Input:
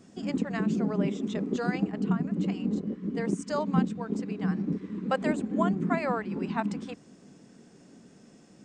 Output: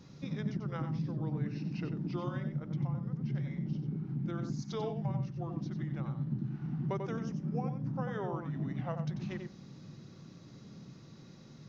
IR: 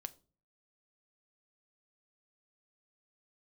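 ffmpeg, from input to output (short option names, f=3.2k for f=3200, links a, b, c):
-filter_complex "[0:a]acompressor=threshold=-36dB:ratio=4,asetrate=32634,aresample=44100,asplit=2[a][b];[1:a]atrim=start_sample=2205,lowshelf=f=340:g=8.5,adelay=92[c];[b][c]afir=irnorm=-1:irlink=0,volume=-4.5dB[d];[a][d]amix=inputs=2:normalize=0"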